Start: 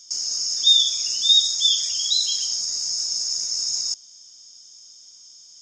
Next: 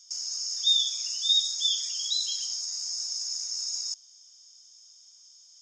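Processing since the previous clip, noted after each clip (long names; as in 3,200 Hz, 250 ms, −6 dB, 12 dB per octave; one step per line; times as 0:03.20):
Butterworth high-pass 710 Hz 72 dB per octave
level −7.5 dB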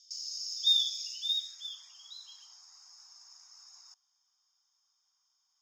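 band-pass filter sweep 4,100 Hz → 1,100 Hz, 0:01.01–0:01.83
floating-point word with a short mantissa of 4 bits
level −1 dB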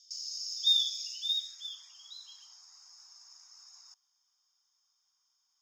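high-pass filter 580 Hz 6 dB per octave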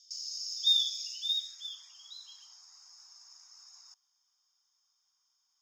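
no processing that can be heard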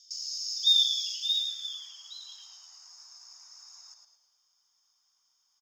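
echo with shifted repeats 108 ms, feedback 44%, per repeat −72 Hz, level −6 dB
level +3 dB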